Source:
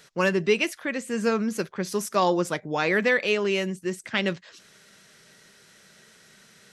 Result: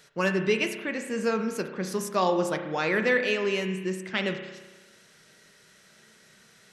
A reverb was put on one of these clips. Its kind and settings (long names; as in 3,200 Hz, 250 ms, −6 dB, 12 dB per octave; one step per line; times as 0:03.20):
spring reverb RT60 1.2 s, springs 32 ms, chirp 70 ms, DRR 6 dB
level −3 dB